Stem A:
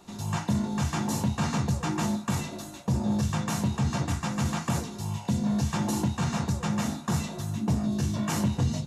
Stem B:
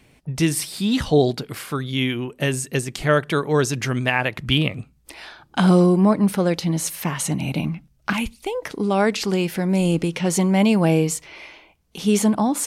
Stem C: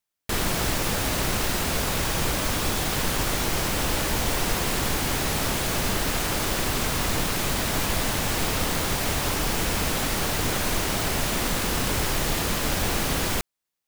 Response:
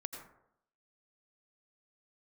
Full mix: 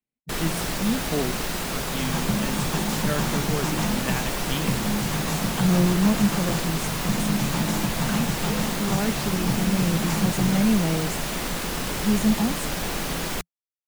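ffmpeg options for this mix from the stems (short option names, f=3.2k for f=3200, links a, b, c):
-filter_complex "[0:a]adelay=1800,volume=-1dB[a];[1:a]equalizer=f=220:w=3.6:g=9.5,volume=-12dB[b];[2:a]volume=-2.5dB[c];[a][b][c]amix=inputs=3:normalize=0,adynamicequalizer=threshold=0.00891:dfrequency=170:dqfactor=4.8:tfrequency=170:tqfactor=4.8:attack=5:release=100:ratio=0.375:range=3.5:mode=boostabove:tftype=bell,afftdn=nr=28:nf=-44,equalizer=f=84:w=3.2:g=-14"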